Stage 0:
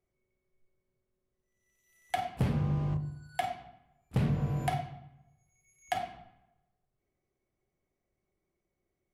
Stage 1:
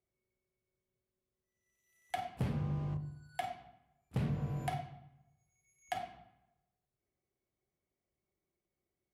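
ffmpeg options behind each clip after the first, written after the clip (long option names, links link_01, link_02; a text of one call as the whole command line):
ffmpeg -i in.wav -af "highpass=42,volume=-6dB" out.wav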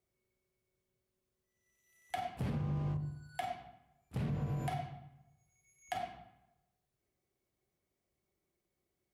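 ffmpeg -i in.wav -af "alimiter=level_in=8.5dB:limit=-24dB:level=0:latency=1:release=61,volume=-8.5dB,volume=3.5dB" out.wav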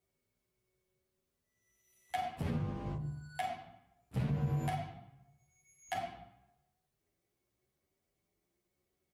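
ffmpeg -i in.wav -filter_complex "[0:a]asplit=2[link_01][link_02];[link_02]adelay=10.3,afreqshift=0.88[link_03];[link_01][link_03]amix=inputs=2:normalize=1,volume=4.5dB" out.wav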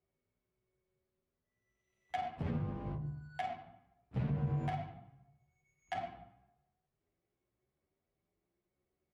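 ffmpeg -i in.wav -af "adynamicsmooth=sensitivity=6.5:basefreq=2700,volume=-1dB" out.wav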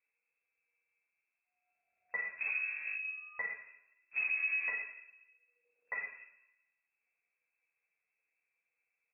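ffmpeg -i in.wav -af "lowpass=frequency=2300:width_type=q:width=0.5098,lowpass=frequency=2300:width_type=q:width=0.6013,lowpass=frequency=2300:width_type=q:width=0.9,lowpass=frequency=2300:width_type=q:width=2.563,afreqshift=-2700" out.wav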